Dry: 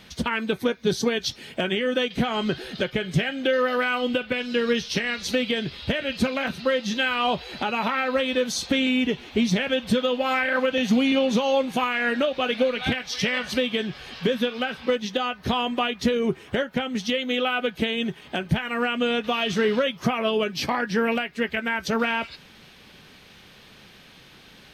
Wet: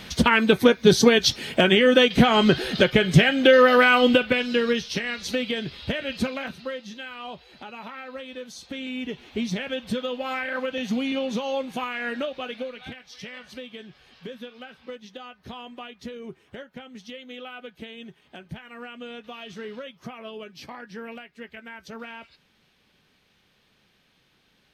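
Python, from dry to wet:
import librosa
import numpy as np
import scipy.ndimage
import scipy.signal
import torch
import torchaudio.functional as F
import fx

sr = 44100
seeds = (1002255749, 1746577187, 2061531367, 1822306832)

y = fx.gain(x, sr, db=fx.line((4.08, 7.5), (4.88, -2.5), (6.21, -2.5), (7.0, -14.0), (8.62, -14.0), (9.26, -6.0), (12.24, -6.0), (12.94, -15.0)))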